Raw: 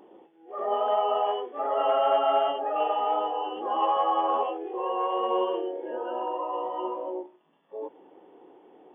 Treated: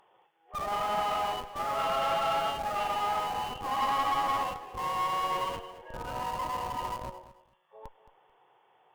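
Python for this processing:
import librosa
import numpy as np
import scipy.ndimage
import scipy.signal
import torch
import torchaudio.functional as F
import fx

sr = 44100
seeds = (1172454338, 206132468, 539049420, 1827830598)

p1 = fx.curve_eq(x, sr, hz=(130.0, 280.0, 410.0, 1100.0), db=(0, -29, -16, 2))
p2 = fx.schmitt(p1, sr, flips_db=-35.0)
p3 = p1 + (p2 * librosa.db_to_amplitude(-7.5))
p4 = fx.tube_stage(p3, sr, drive_db=22.0, bias=0.55)
y = fx.echo_feedback(p4, sr, ms=220, feedback_pct=21, wet_db=-15.0)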